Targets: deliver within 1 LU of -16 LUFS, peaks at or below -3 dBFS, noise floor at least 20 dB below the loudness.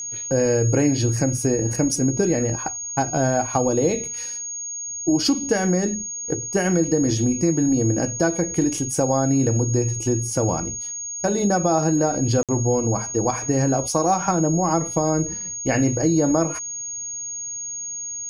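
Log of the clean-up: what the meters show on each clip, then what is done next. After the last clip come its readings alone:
dropouts 1; longest dropout 57 ms; steady tone 6.6 kHz; tone level -28 dBFS; loudness -21.5 LUFS; peak level -7.0 dBFS; loudness target -16.0 LUFS
-> interpolate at 12.43 s, 57 ms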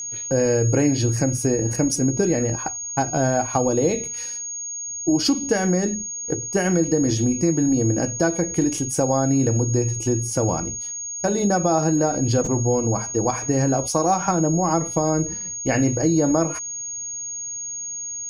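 dropouts 0; steady tone 6.6 kHz; tone level -28 dBFS
-> band-stop 6.6 kHz, Q 30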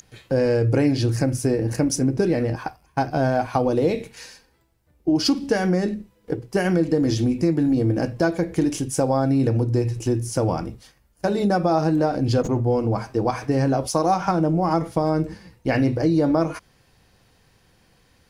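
steady tone not found; loudness -22.0 LUFS; peak level -8.0 dBFS; loudness target -16.0 LUFS
-> trim +6 dB; peak limiter -3 dBFS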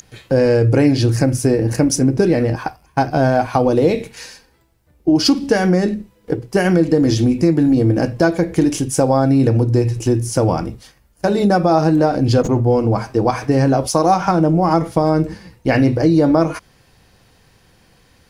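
loudness -16.0 LUFS; peak level -3.0 dBFS; noise floor -54 dBFS

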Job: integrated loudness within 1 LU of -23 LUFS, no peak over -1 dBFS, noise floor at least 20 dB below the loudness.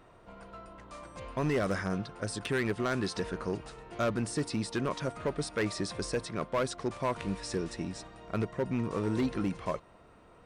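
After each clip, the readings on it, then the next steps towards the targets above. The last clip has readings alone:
clipped samples 1.4%; clipping level -24.0 dBFS; loudness -33.5 LUFS; peak level -24.0 dBFS; loudness target -23.0 LUFS
-> clip repair -24 dBFS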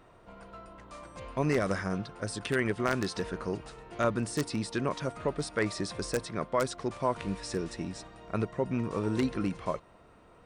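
clipped samples 0.0%; loudness -32.5 LUFS; peak level -15.0 dBFS; loudness target -23.0 LUFS
-> trim +9.5 dB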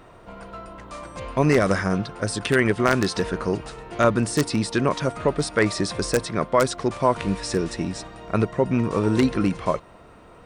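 loudness -23.0 LUFS; peak level -5.5 dBFS; noise floor -48 dBFS

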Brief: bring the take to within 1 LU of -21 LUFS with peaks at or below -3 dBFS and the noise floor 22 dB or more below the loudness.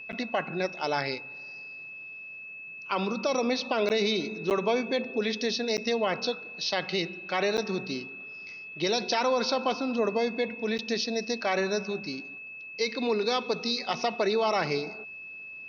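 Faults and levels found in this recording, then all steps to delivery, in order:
dropouts 6; longest dropout 9.0 ms; steady tone 2.6 kHz; tone level -40 dBFS; loudness -29.0 LUFS; peak level -15.5 dBFS; loudness target -21.0 LUFS
-> interpolate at 0.12/3.89/4.50/5.77/7.57/10.78 s, 9 ms; band-stop 2.6 kHz, Q 30; trim +8 dB

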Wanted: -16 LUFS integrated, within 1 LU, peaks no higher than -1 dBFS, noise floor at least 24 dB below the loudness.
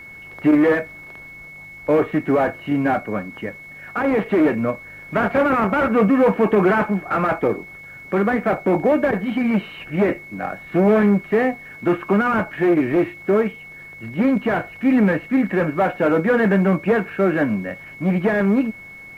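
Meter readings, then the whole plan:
steady tone 2.2 kHz; tone level -37 dBFS; loudness -19.5 LUFS; peak level -5.5 dBFS; loudness target -16.0 LUFS
-> band-stop 2.2 kHz, Q 30; trim +3.5 dB

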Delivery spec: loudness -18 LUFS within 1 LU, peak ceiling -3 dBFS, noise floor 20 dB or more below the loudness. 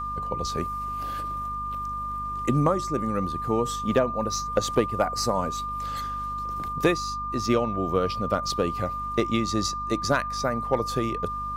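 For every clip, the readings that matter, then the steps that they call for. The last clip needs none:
hum 50 Hz; highest harmonic 250 Hz; hum level -37 dBFS; steady tone 1.2 kHz; tone level -29 dBFS; loudness -27.0 LUFS; peak level -9.5 dBFS; loudness target -18.0 LUFS
-> hum notches 50/100/150/200/250 Hz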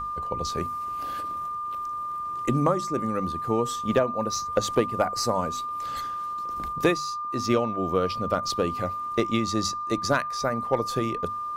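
hum not found; steady tone 1.2 kHz; tone level -29 dBFS
-> band-stop 1.2 kHz, Q 30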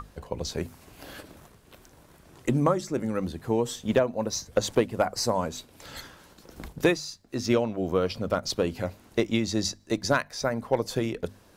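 steady tone not found; loudness -28.0 LUFS; peak level -10.0 dBFS; loudness target -18.0 LUFS
-> trim +10 dB; peak limiter -3 dBFS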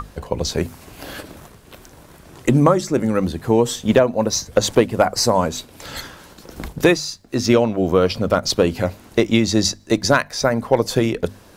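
loudness -18.5 LUFS; peak level -3.0 dBFS; noise floor -46 dBFS

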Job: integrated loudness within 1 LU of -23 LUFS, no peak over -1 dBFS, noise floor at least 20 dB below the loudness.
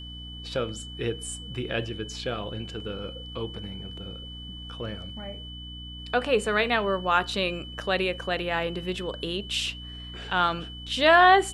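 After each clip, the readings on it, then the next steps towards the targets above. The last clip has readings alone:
hum 60 Hz; highest harmonic 300 Hz; hum level -40 dBFS; steady tone 3 kHz; tone level -41 dBFS; loudness -26.5 LUFS; peak level -5.0 dBFS; loudness target -23.0 LUFS
-> de-hum 60 Hz, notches 5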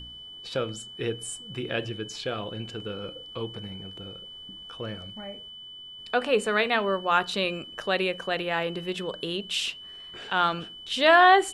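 hum not found; steady tone 3 kHz; tone level -41 dBFS
-> band-stop 3 kHz, Q 30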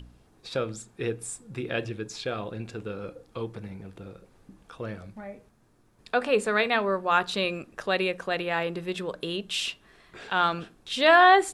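steady tone not found; loudness -26.5 LUFS; peak level -5.5 dBFS; loudness target -23.0 LUFS
-> trim +3.5 dB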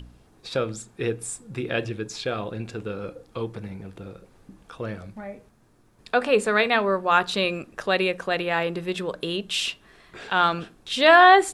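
loudness -23.0 LUFS; peak level -2.0 dBFS; noise floor -57 dBFS

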